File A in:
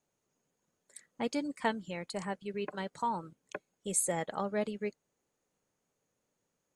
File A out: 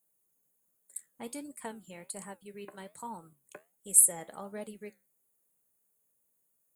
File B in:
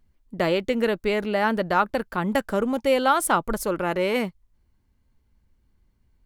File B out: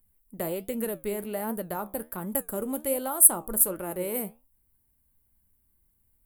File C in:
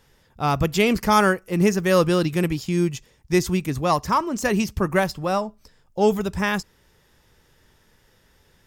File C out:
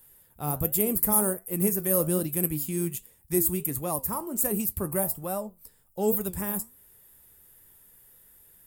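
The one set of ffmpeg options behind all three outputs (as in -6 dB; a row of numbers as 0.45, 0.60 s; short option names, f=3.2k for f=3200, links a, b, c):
-filter_complex "[0:a]acrossover=split=870|7100[a][b][c];[b]acompressor=threshold=-37dB:ratio=6[d];[a][d][c]amix=inputs=3:normalize=0,flanger=delay=8:depth=7.6:regen=72:speed=1.3:shape=triangular,aexciter=amount=11.6:drive=8.1:freq=8.5k,volume=-3.5dB"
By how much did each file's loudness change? +13.5, -2.0, -4.5 LU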